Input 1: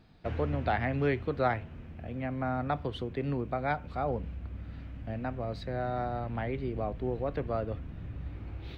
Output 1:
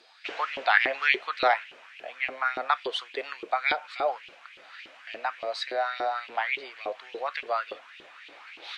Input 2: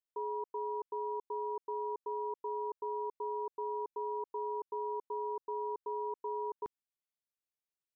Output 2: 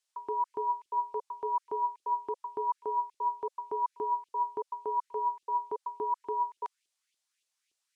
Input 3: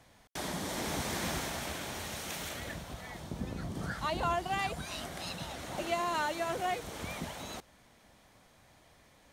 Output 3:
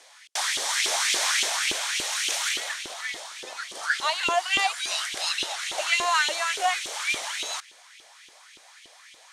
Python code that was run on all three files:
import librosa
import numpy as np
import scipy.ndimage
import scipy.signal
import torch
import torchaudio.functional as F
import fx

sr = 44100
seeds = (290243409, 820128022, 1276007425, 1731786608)

y = fx.weighting(x, sr, curve='ITU-R 468')
y = fx.filter_lfo_highpass(y, sr, shape='saw_up', hz=3.5, low_hz=350.0, high_hz=3100.0, q=3.6)
y = y * librosa.db_to_amplitude(3.5)